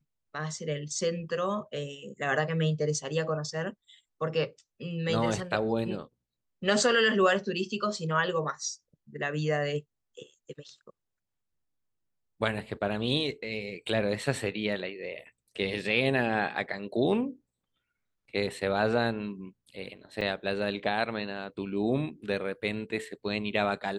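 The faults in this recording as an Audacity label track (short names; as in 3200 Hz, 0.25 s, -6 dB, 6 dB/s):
20.210000	20.210000	gap 4.4 ms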